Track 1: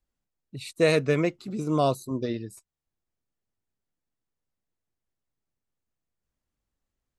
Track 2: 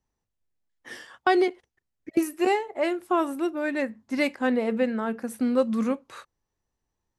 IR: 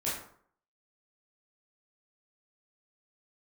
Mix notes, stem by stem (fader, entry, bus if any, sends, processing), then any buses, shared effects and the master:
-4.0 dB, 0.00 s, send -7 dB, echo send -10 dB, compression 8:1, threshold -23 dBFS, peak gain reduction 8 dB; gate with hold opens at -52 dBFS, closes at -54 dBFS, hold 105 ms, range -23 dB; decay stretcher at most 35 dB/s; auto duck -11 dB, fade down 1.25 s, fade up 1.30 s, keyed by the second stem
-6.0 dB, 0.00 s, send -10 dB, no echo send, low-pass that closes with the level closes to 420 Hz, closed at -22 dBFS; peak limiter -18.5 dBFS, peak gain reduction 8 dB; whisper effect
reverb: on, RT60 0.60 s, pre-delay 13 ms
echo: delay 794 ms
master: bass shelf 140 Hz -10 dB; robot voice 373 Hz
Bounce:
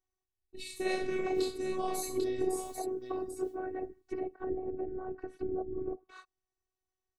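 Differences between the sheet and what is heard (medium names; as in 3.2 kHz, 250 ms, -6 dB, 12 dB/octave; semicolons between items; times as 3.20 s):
stem 2: send off; master: missing bass shelf 140 Hz -10 dB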